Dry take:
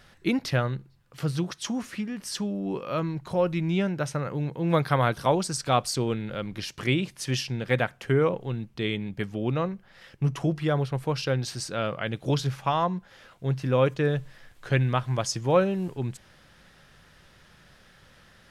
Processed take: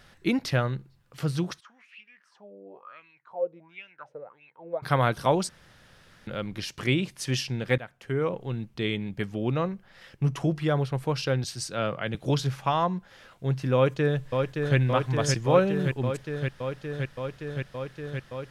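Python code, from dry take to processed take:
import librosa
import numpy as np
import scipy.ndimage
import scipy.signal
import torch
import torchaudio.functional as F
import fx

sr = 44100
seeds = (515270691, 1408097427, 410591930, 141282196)

y = fx.wah_lfo(x, sr, hz=fx.line((1.59, 0.62), (4.82, 2.2)), low_hz=460.0, high_hz=2700.0, q=8.5, at=(1.59, 4.82), fade=0.02)
y = fx.band_widen(y, sr, depth_pct=40, at=(11.44, 12.15))
y = fx.echo_throw(y, sr, start_s=13.75, length_s=1.02, ms=570, feedback_pct=85, wet_db=-4.5)
y = fx.edit(y, sr, fx.room_tone_fill(start_s=5.49, length_s=0.78),
    fx.fade_in_from(start_s=7.78, length_s=0.82, floor_db=-17.5), tone=tone)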